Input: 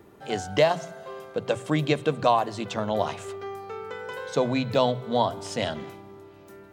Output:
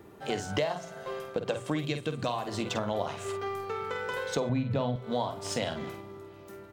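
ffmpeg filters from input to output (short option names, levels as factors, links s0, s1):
-filter_complex "[0:a]asplit=2[s0][s1];[s1]aeval=exprs='sgn(val(0))*max(abs(val(0))-0.00944,0)':c=same,volume=0.631[s2];[s0][s2]amix=inputs=2:normalize=0,asettb=1/sr,asplit=3[s3][s4][s5];[s3]atrim=end=1.854[s6];[s4]atrim=start=1.85:end=2.48,asetpts=PTS-STARTPTS,afade=t=in:d=0.004:c=qsin,afade=t=out:st=0.626:d=0.004:c=qsin,equalizer=f=780:t=o:w=2.4:g=-8[s7];[s5]atrim=start=2.476[s8];[s6][s7]acrossfade=d=0.004:c1=hsin:c2=qsin[s9];[s9][s8]acrossfade=d=0.004:c1=qsin:c2=hsin,asplit=2[s10][s11];[s11]adelay=49,volume=0.398[s12];[s10][s12]amix=inputs=2:normalize=0,asettb=1/sr,asplit=3[s13][s14][s15];[s13]atrim=end=4.494[s16];[s14]atrim=start=4.49:end=4.96,asetpts=PTS-STARTPTS,afade=t=in:d=0.004:c=qsin,afade=t=out:st=0.466:d=0.004:c=qsin,bass=f=250:g=11,treble=f=4000:g=-12[s17];[s15]atrim=start=4.956[s18];[s16][s17]acrossfade=d=0.004:c1=hsin:c2=qsin[s19];[s19][s18]acrossfade=d=0.004:c1=qsin:c2=hsin,acompressor=threshold=0.0355:ratio=4"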